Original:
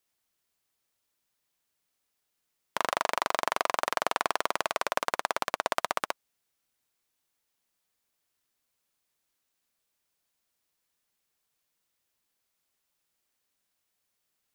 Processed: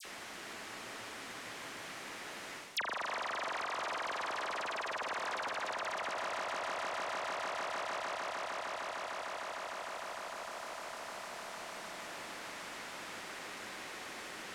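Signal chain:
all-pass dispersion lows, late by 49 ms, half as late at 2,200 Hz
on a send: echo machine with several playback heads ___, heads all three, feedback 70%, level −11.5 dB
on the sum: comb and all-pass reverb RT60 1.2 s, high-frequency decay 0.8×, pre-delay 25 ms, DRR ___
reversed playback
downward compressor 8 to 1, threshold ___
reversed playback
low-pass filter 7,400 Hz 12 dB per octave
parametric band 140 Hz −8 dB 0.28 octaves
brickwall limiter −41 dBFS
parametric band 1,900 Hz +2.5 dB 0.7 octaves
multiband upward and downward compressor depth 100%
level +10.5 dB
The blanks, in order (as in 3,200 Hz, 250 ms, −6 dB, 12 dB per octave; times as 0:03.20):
152 ms, 12.5 dB, −39 dBFS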